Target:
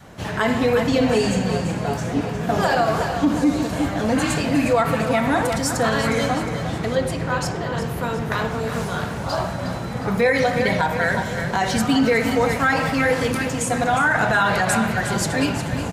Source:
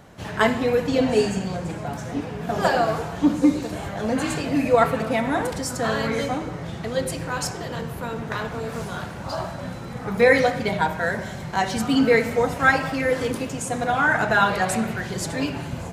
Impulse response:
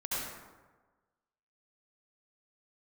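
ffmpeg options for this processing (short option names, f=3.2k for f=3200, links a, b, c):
-filter_complex "[0:a]asettb=1/sr,asplit=3[a][b][c];[a]atrim=end=6.954[d];[b]atrim=start=6.95:end=7.82,asetpts=PTS-STARTPTS,afade=t=in:d=0.004:c=qsin,afade=t=out:st=0.866:d=0.004:c=qsin,highshelf=f=4.9k:g=-11.5[e];[c]atrim=start=7.816[f];[d][e]acrossfade=d=0.004:c1=hsin:c2=qsin[g];[g][f]acrossfade=d=0.004:c1=qsin:c2=hsin,aecho=1:1:359|718|1077|1436|1795:0.299|0.137|0.0632|0.0291|0.0134,adynamicequalizer=threshold=0.0251:dfrequency=410:dqfactor=1.3:tfrequency=410:tqfactor=1.3:attack=5:release=100:ratio=0.375:range=2:mode=cutabove:tftype=bell,alimiter=limit=-14.5dB:level=0:latency=1:release=55,volume=5dB"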